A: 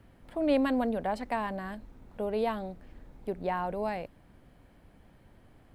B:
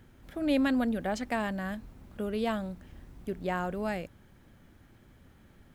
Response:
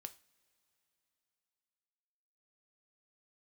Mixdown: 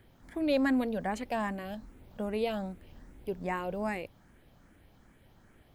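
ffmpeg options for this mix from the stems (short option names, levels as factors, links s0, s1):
-filter_complex "[0:a]volume=0.562[s0];[1:a]lowshelf=f=340:g=-6.5,asplit=2[s1][s2];[s2]afreqshift=2.5[s3];[s1][s3]amix=inputs=2:normalize=1,volume=1.06[s4];[s0][s4]amix=inputs=2:normalize=0"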